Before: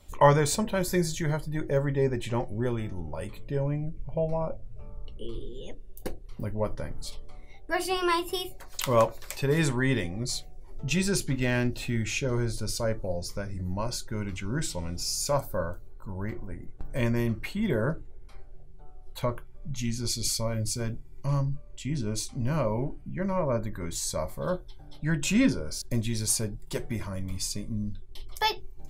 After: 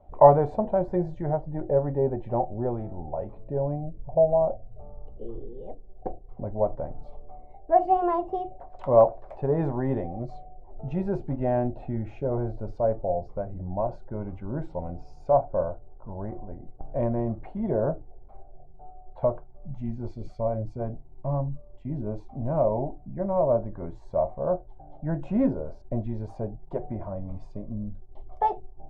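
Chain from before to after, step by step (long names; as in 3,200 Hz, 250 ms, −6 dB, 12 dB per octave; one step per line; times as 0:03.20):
low-pass with resonance 720 Hz, resonance Q 6.7
level −2 dB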